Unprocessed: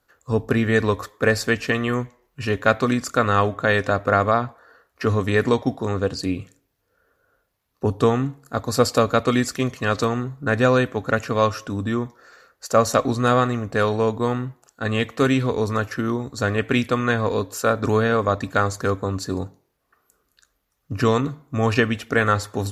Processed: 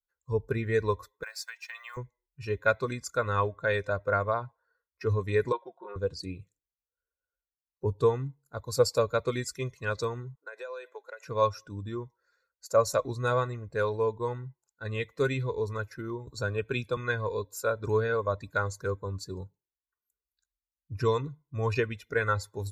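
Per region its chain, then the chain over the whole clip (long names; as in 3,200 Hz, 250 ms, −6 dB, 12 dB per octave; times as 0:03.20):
0:01.23–0:01.97: mu-law and A-law mismatch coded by A + Butterworth high-pass 690 Hz + downward compressor, threshold −23 dBFS
0:05.52–0:05.96: loudspeaker in its box 490–3,000 Hz, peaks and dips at 560 Hz −3 dB, 900 Hz −3 dB, 1,300 Hz +4 dB, 2,000 Hz −7 dB + comb filter 5.6 ms, depth 80%
0:10.35–0:11.27: high-pass filter 430 Hz 24 dB per octave + downward compressor 8 to 1, threshold −24 dBFS
0:16.27–0:16.97: notch filter 2,000 Hz, Q 5 + multiband upward and downward compressor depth 40%
whole clip: spectral dynamics exaggerated over time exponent 1.5; notch filter 3,000 Hz, Q 6.3; comb filter 2 ms, depth 68%; level −7 dB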